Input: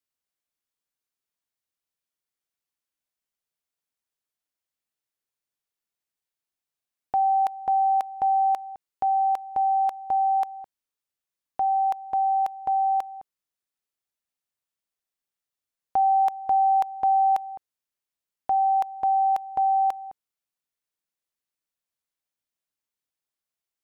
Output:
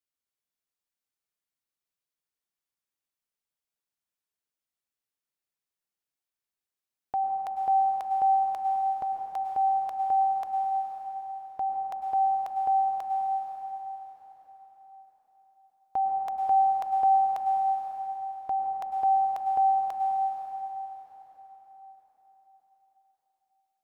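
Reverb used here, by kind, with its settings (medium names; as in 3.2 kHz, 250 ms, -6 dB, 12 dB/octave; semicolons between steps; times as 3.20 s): plate-style reverb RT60 4.9 s, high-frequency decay 0.8×, pre-delay 90 ms, DRR 0.5 dB; trim -5.5 dB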